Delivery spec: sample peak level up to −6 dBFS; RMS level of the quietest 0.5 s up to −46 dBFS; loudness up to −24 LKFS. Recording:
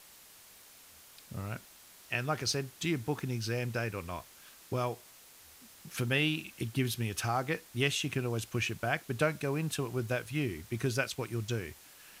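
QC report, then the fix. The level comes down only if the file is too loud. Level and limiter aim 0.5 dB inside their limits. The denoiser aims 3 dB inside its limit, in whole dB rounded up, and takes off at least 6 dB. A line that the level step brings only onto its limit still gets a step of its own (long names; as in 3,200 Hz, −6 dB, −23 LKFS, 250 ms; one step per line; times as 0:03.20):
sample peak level −15.0 dBFS: in spec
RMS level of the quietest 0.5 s −56 dBFS: in spec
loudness −34.0 LKFS: in spec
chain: no processing needed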